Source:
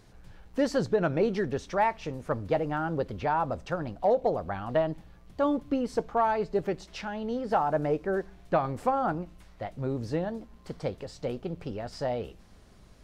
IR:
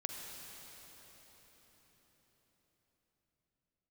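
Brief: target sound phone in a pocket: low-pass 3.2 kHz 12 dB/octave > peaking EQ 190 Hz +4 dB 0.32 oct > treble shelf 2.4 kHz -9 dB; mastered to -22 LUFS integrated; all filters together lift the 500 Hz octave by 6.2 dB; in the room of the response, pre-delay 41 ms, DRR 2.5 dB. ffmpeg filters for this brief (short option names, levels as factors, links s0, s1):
-filter_complex "[0:a]equalizer=f=500:t=o:g=8,asplit=2[s0][s1];[1:a]atrim=start_sample=2205,adelay=41[s2];[s1][s2]afir=irnorm=-1:irlink=0,volume=0.75[s3];[s0][s3]amix=inputs=2:normalize=0,lowpass=3200,equalizer=f=190:t=o:w=0.32:g=4,highshelf=f=2400:g=-9,volume=1.19"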